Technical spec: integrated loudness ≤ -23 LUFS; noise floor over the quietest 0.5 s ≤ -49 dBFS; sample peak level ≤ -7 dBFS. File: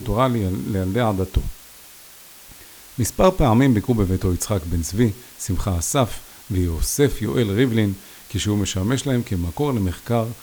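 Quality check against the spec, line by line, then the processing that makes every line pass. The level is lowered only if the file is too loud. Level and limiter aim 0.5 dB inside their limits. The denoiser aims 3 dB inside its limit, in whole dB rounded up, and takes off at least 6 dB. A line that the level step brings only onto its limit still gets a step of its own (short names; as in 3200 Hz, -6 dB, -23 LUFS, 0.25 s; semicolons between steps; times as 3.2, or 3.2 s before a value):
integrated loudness -21.5 LUFS: fail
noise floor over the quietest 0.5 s -44 dBFS: fail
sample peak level -5.0 dBFS: fail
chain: denoiser 6 dB, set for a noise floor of -44 dBFS; gain -2 dB; limiter -7.5 dBFS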